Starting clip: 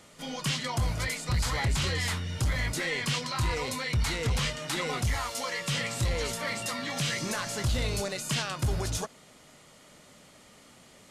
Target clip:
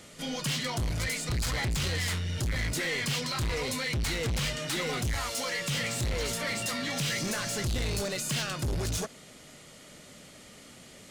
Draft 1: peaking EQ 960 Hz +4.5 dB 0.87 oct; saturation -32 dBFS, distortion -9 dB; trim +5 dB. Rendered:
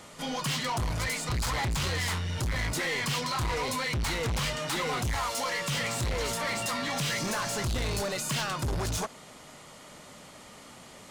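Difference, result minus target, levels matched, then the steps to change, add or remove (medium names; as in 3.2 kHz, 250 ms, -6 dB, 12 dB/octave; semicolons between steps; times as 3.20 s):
1 kHz band +6.0 dB
change: peaking EQ 960 Hz -6.5 dB 0.87 oct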